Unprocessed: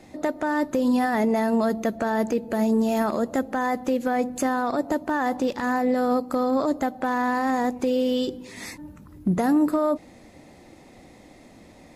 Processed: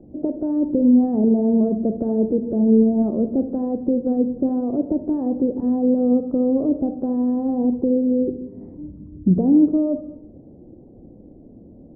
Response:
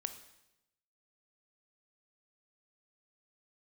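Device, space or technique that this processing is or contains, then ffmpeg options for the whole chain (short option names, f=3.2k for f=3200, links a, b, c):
next room: -filter_complex "[0:a]lowpass=f=470:w=0.5412,lowpass=f=470:w=1.3066[a];[1:a]atrim=start_sample=2205[b];[a][b]afir=irnorm=-1:irlink=0,volume=7.5dB"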